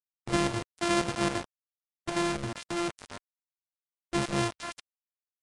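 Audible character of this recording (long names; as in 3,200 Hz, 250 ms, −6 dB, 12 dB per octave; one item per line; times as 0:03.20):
a buzz of ramps at a fixed pitch in blocks of 128 samples
chopped level 3.7 Hz, depth 65%, duty 75%
a quantiser's noise floor 6 bits, dither none
Ogg Vorbis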